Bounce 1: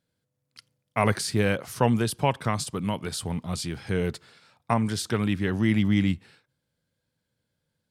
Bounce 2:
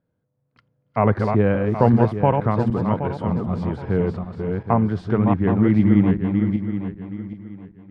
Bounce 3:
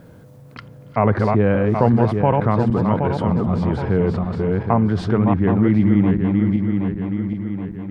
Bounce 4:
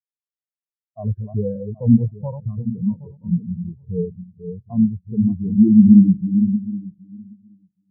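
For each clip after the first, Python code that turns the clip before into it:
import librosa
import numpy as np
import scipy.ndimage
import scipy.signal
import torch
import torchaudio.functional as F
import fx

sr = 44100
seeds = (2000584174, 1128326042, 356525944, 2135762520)

y1 = fx.reverse_delay_fb(x, sr, ms=386, feedback_pct=52, wet_db=-4.5)
y1 = scipy.signal.sosfilt(scipy.signal.butter(2, 1100.0, 'lowpass', fs=sr, output='sos'), y1)
y1 = F.gain(torch.from_numpy(y1), 6.0).numpy()
y2 = fx.env_flatten(y1, sr, amount_pct=50)
y2 = F.gain(torch.from_numpy(y2), -1.0).numpy()
y3 = fx.high_shelf(y2, sr, hz=3200.0, db=9.5)
y3 = fx.leveller(y3, sr, passes=1)
y3 = fx.spectral_expand(y3, sr, expansion=4.0)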